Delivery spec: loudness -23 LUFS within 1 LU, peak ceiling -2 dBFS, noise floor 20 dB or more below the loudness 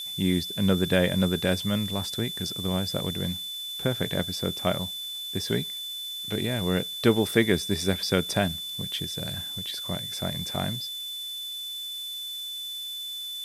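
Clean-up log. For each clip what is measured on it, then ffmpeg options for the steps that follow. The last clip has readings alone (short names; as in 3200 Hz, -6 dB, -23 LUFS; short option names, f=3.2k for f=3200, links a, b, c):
steady tone 3500 Hz; tone level -33 dBFS; noise floor -36 dBFS; noise floor target -48 dBFS; loudness -28.0 LUFS; peak -6.0 dBFS; loudness target -23.0 LUFS
-> -af "bandreject=f=3.5k:w=30"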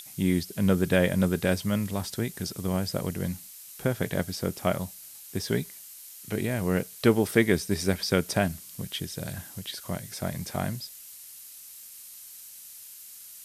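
steady tone none; noise floor -46 dBFS; noise floor target -49 dBFS
-> -af "afftdn=nr=6:nf=-46"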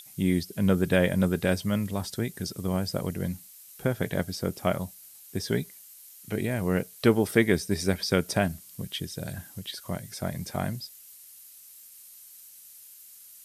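noise floor -50 dBFS; loudness -28.5 LUFS; peak -6.5 dBFS; loudness target -23.0 LUFS
-> -af "volume=5.5dB,alimiter=limit=-2dB:level=0:latency=1"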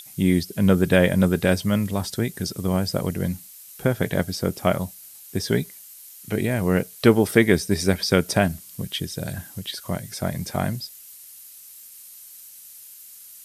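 loudness -23.0 LUFS; peak -2.0 dBFS; noise floor -45 dBFS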